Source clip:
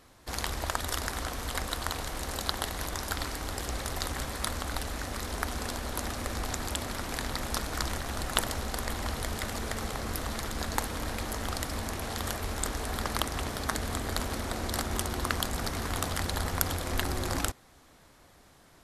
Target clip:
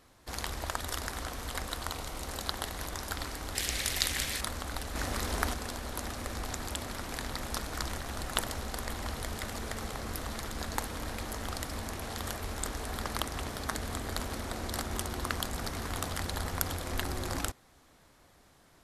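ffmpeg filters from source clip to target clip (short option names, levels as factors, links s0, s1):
-filter_complex "[0:a]asettb=1/sr,asplit=3[s0][s1][s2];[s0]atrim=end=1.854[s3];[s1]atrim=start=1.85:end=2.28,asetpts=PTS-STARTPTS,afade=t=in:d=0.004:c=qsin,afade=t=out:st=0.426:d=0.004:c=qsin,bandreject=f=1700:w=8.3[s4];[s2]atrim=start=2.276[s5];[s3][s4]acrossfade=d=0.004:c1=hsin:c2=qsin[s6];[s6][s5]acrossfade=d=0.004:c1=qsin:c2=hsin,asettb=1/sr,asplit=3[s7][s8][s9];[s7]atrim=end=3.554[s10];[s8]atrim=start=3.55:end=4.41,asetpts=PTS-STARTPTS,afade=t=in:d=0.004:c=qsin,afade=t=out:st=0.856:d=0.004:c=qsin,highshelf=f=1600:t=q:w=1.5:g=9.5[s11];[s9]atrim=start=4.406[s12];[s10][s11]acrossfade=d=0.004:c1=hsin:c2=qsin[s13];[s13][s12]acrossfade=d=0.004:c1=qsin:c2=hsin,asettb=1/sr,asplit=3[s14][s15][s16];[s14]atrim=end=4.954[s17];[s15]atrim=start=4.95:end=5.54,asetpts=PTS-STARTPTS,afade=t=in:d=0.004:c=qsin,afade=t=out:st=0.586:d=0.004:c=qsin,acontrast=38[s18];[s16]atrim=start=5.536[s19];[s17][s18]acrossfade=d=0.004:c1=hsin:c2=qsin[s20];[s20][s19]acrossfade=d=0.004:c1=qsin:c2=hsin,volume=0.668"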